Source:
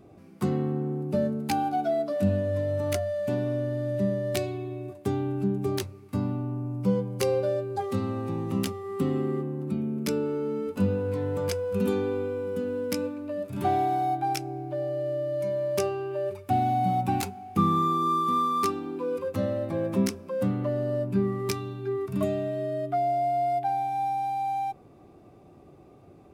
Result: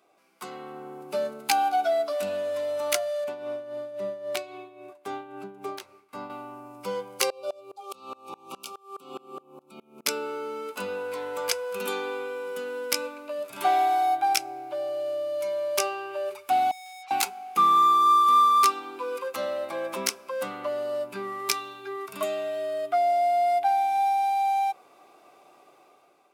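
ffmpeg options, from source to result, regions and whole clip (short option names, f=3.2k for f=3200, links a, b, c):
-filter_complex "[0:a]asettb=1/sr,asplit=3[a][b][c];[a]atrim=end=3.244[d];[b]atrim=start=3.24:end=6.3,asetpts=PTS-STARTPTS,afade=t=in:d=0.004:c=qsin,afade=t=out:st=3.056:d=0.004:c=qsin,highshelf=f=2.6k:g=-11,tremolo=f=3.7:d=0.64[e];[c]atrim=start=6.296[f];[d][e]acrossfade=d=0.004:c1=hsin:c2=qsin[g];[g][f]acrossfade=d=0.004:c1=qsin:c2=hsin,asettb=1/sr,asplit=3[h][i][j];[h]atrim=end=7.304[k];[i]atrim=start=7.3:end=10.06,asetpts=PTS-STARTPTS,afade=t=in:d=0.004:c=qsin,afade=t=out:st=2.756:d=0.004:c=qsin,asuperstop=centerf=1800:order=20:qfactor=2.3,aeval=exprs='val(0)*pow(10,-27*if(lt(mod(-4.8*n/s,1),2*abs(-4.8)/1000),1-mod(-4.8*n/s,1)/(2*abs(-4.8)/1000),(mod(-4.8*n/s,1)-2*abs(-4.8)/1000)/(1-2*abs(-4.8)/1000))/20)':c=same[l];[j]atrim=start=10.056[m];[k][l]acrossfade=d=0.004:c1=hsin:c2=qsin[n];[n][m]acrossfade=d=0.004:c1=qsin:c2=hsin,asettb=1/sr,asplit=3[o][p][q];[o]atrim=end=16.714[r];[p]atrim=start=16.71:end=17.11,asetpts=PTS-STARTPTS,afade=t=in:d=0.004:c=qsin,afade=t=out:st=0.396:d=0.004:c=qsin,asplit=3[s][t][u];[s]bandpass=f=730:t=q:w=8,volume=0dB[v];[t]bandpass=f=1.09k:t=q:w=8,volume=-6dB[w];[u]bandpass=f=2.44k:t=q:w=8,volume=-9dB[x];[v][w][x]amix=inputs=3:normalize=0,aeval=exprs='(tanh(251*val(0)+0.1)-tanh(0.1))/251':c=same[y];[q]atrim=start=17.106[z];[r][y]acrossfade=d=0.004:c1=hsin:c2=qsin[aa];[aa][z]acrossfade=d=0.004:c1=qsin:c2=hsin,highpass=950,bandreject=f=1.8k:w=8.9,dynaudnorm=f=290:g=5:m=9.5dB"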